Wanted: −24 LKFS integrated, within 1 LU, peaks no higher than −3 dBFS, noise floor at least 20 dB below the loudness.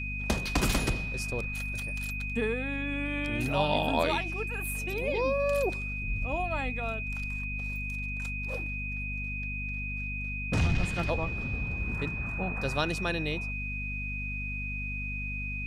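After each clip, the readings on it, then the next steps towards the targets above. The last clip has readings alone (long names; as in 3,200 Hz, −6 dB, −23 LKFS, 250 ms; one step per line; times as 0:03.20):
mains hum 50 Hz; hum harmonics up to 250 Hz; level of the hum −34 dBFS; interfering tone 2,500 Hz; level of the tone −35 dBFS; integrated loudness −31.5 LKFS; sample peak −13.0 dBFS; target loudness −24.0 LKFS
→ hum removal 50 Hz, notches 5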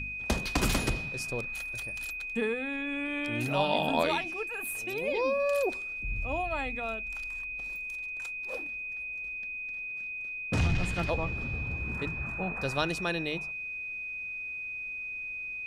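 mains hum none found; interfering tone 2,500 Hz; level of the tone −35 dBFS
→ notch filter 2,500 Hz, Q 30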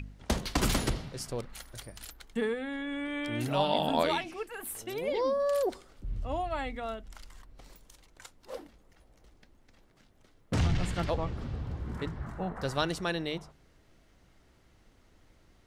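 interfering tone none found; integrated loudness −33.0 LKFS; sample peak −13.0 dBFS; target loudness −24.0 LKFS
→ level +9 dB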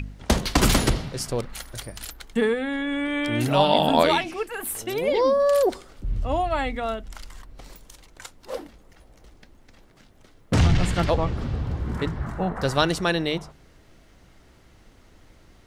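integrated loudness −24.0 LKFS; sample peak −4.0 dBFS; background noise floor −54 dBFS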